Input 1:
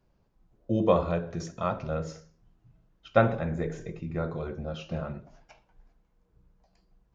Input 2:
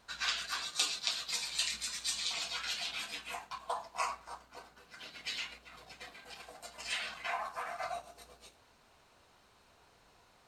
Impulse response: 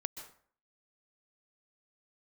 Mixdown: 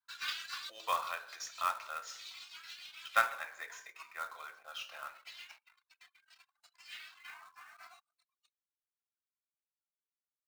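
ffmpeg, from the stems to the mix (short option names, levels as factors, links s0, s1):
-filter_complex "[0:a]volume=1,asplit=3[s0][s1][s2];[s1]volume=0.237[s3];[1:a]acrossover=split=5700[s4][s5];[s5]acompressor=threshold=0.00141:ratio=4:attack=1:release=60[s6];[s4][s6]amix=inputs=2:normalize=0,asplit=2[s7][s8];[s8]adelay=2.7,afreqshift=2.7[s9];[s7][s9]amix=inputs=2:normalize=1,volume=0.944,afade=t=out:st=0.94:d=0.39:silence=0.421697[s10];[s2]apad=whole_len=462084[s11];[s10][s11]sidechaincompress=threshold=0.00891:ratio=8:attack=5.9:release=103[s12];[2:a]atrim=start_sample=2205[s13];[s3][s13]afir=irnorm=-1:irlink=0[s14];[s0][s12][s14]amix=inputs=3:normalize=0,highpass=f=1100:w=0.5412,highpass=f=1100:w=1.3066,anlmdn=0.00001,acrusher=bits=3:mode=log:mix=0:aa=0.000001"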